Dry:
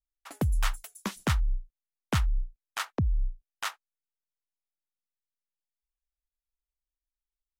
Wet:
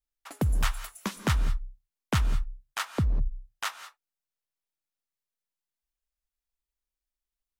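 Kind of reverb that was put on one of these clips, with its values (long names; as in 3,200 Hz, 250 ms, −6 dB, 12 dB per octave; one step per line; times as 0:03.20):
reverb whose tail is shaped and stops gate 220 ms rising, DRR 12 dB
level +1 dB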